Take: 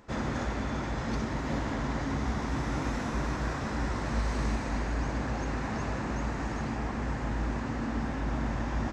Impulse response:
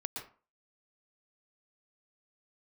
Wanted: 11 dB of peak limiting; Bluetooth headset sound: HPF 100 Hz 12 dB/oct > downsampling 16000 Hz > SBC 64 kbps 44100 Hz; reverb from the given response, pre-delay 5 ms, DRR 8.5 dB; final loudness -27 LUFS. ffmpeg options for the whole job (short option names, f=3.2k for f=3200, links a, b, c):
-filter_complex "[0:a]alimiter=level_in=5dB:limit=-24dB:level=0:latency=1,volume=-5dB,asplit=2[a][b];[1:a]atrim=start_sample=2205,adelay=5[c];[b][c]afir=irnorm=-1:irlink=0,volume=-9dB[d];[a][d]amix=inputs=2:normalize=0,highpass=100,aresample=16000,aresample=44100,volume=11.5dB" -ar 44100 -c:a sbc -b:a 64k